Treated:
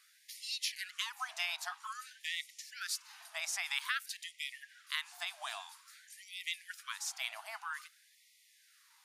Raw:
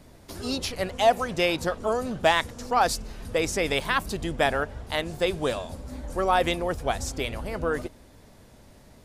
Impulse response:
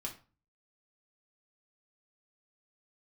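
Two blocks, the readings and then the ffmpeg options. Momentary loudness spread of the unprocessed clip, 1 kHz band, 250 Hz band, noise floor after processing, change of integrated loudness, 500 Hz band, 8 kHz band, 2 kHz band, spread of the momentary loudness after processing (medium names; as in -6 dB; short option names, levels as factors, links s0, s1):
10 LU, -20.0 dB, under -40 dB, -67 dBFS, -13.0 dB, -33.5 dB, -5.5 dB, -9.5 dB, 10 LU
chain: -af "acompressor=threshold=0.0631:ratio=4,equalizer=f=360:w=0.83:g=-14,bandreject=f=7700:w=20,afftfilt=real='re*gte(b*sr/1024,600*pow(1900/600,0.5+0.5*sin(2*PI*0.51*pts/sr)))':imag='im*gte(b*sr/1024,600*pow(1900/600,0.5+0.5*sin(2*PI*0.51*pts/sr)))':win_size=1024:overlap=0.75,volume=0.668"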